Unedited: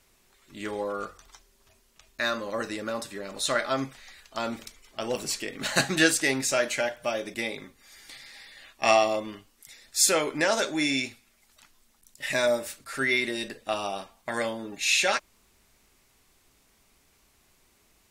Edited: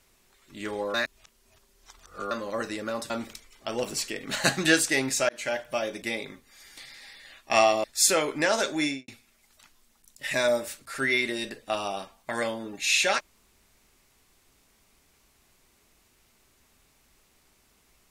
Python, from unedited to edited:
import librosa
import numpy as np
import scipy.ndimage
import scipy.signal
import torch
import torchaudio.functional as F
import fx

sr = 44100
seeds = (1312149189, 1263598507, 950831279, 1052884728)

y = fx.studio_fade_out(x, sr, start_s=10.81, length_s=0.26)
y = fx.edit(y, sr, fx.reverse_span(start_s=0.94, length_s=1.37),
    fx.cut(start_s=3.1, length_s=1.32),
    fx.fade_in_span(start_s=6.61, length_s=0.36, curve='qsin'),
    fx.cut(start_s=9.16, length_s=0.67), tone=tone)